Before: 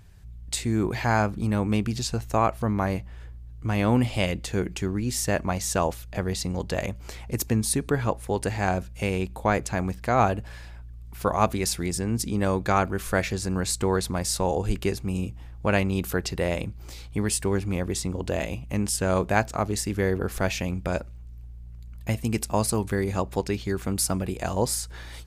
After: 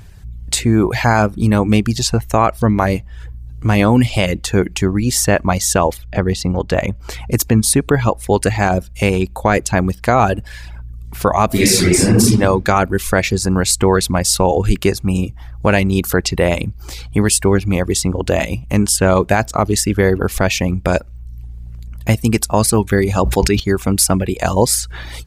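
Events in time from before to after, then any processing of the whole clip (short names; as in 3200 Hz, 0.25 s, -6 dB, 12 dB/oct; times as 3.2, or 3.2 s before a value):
5.97–7.1 high shelf 4700 Hz -11.5 dB
11.46–12.28 reverb throw, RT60 1.1 s, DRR -6.5 dB
22.91–23.6 sustainer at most 49 dB/s
whole clip: reverb removal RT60 0.61 s; maximiser +13.5 dB; gain -1 dB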